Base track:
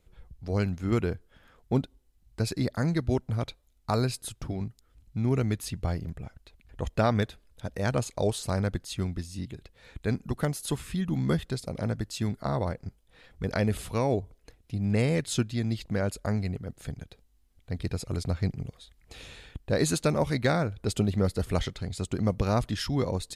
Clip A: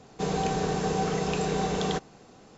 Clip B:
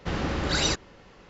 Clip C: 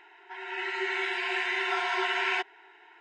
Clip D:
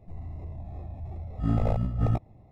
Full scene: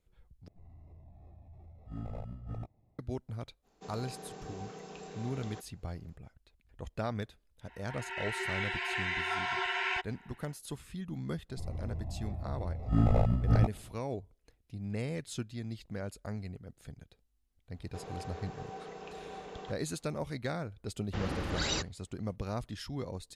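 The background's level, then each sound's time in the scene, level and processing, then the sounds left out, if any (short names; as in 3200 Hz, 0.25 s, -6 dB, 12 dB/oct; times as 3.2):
base track -11 dB
0.48 replace with D -16 dB
3.62 add A -18 dB, fades 0.05 s + HPF 180 Hz
7.59 add C -4.5 dB, fades 0.10 s + HPF 390 Hz
11.49 add D -0.5 dB
17.74 add A -15 dB + tone controls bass -12 dB, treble -10 dB
21.07 add B -8 dB + expander -41 dBFS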